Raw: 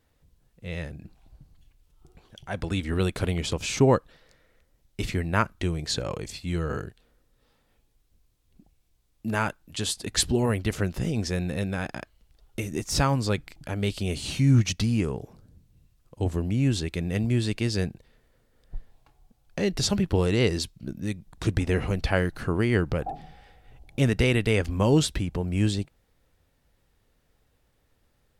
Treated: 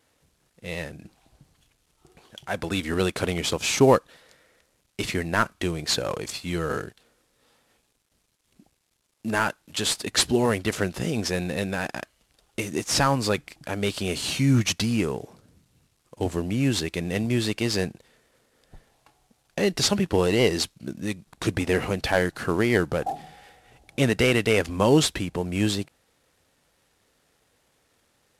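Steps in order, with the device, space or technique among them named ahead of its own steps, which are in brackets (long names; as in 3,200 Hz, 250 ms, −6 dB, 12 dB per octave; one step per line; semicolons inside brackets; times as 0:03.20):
early wireless headset (high-pass filter 290 Hz 6 dB per octave; variable-slope delta modulation 64 kbit/s)
level +5.5 dB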